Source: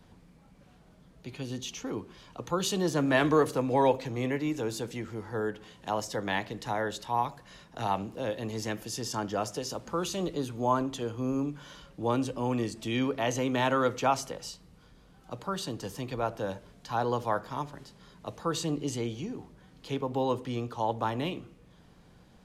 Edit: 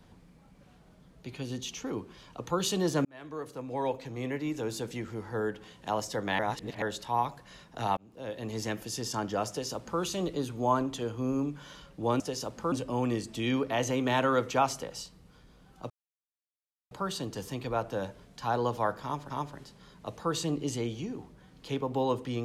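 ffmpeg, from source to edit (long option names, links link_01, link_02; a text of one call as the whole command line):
ffmpeg -i in.wav -filter_complex "[0:a]asplit=9[link_01][link_02][link_03][link_04][link_05][link_06][link_07][link_08][link_09];[link_01]atrim=end=3.05,asetpts=PTS-STARTPTS,afade=type=out:start_time=3.046:duration=0.004:curve=hsin[link_10];[link_02]atrim=start=3.05:end=6.392,asetpts=PTS-STARTPTS,afade=type=in:duration=1.9[link_11];[link_03]atrim=start=6.388:end=6.822,asetpts=PTS-STARTPTS,areverse[link_12];[link_04]atrim=start=6.818:end=7.97,asetpts=PTS-STARTPTS,afade=type=out:start_time=1.148:duration=0.004:curve=hsin[link_13];[link_05]atrim=start=7.97:end=12.202,asetpts=PTS-STARTPTS,afade=type=in:duration=0.6[link_14];[link_06]atrim=start=9.488:end=10.012[link_15];[link_07]atrim=start=12.198:end=15.38,asetpts=PTS-STARTPTS,afade=type=out:start_time=3.178:duration=0.004:curve=hsin,apad=pad_dur=1.01[link_16];[link_08]atrim=start=15.38:end=17.772,asetpts=PTS-STARTPTS,afade=type=in:duration=0.004:curve=hsin[link_17];[link_09]atrim=start=17.498[link_18];[link_10][link_11]concat=n=2:v=0:a=1[link_19];[link_19][link_12]acrossfade=duration=0.004:curve1=hsin:curve2=hsin[link_20];[link_13][link_14]concat=n=2:v=0:a=1[link_21];[link_20][link_21]acrossfade=duration=0.004:curve1=hsin:curve2=hsin[link_22];[link_22][link_15]acrossfade=duration=0.004:curve1=hsin:curve2=hsin[link_23];[link_16][link_17]concat=n=2:v=0:a=1[link_24];[link_23][link_24]acrossfade=duration=0.004:curve1=hsin:curve2=hsin[link_25];[link_25][link_18]acrossfade=duration=0.004:curve1=hsin:curve2=hsin" out.wav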